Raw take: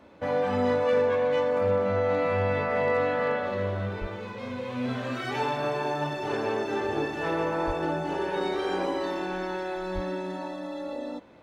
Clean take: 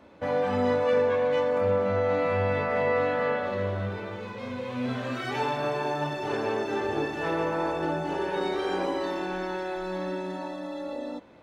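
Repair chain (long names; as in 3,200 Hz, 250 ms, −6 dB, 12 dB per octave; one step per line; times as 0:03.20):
clipped peaks rebuilt −16.5 dBFS
0:04.00–0:04.12: high-pass filter 140 Hz 24 dB per octave
0:07.66–0:07.78: high-pass filter 140 Hz 24 dB per octave
0:09.94–0:10.06: high-pass filter 140 Hz 24 dB per octave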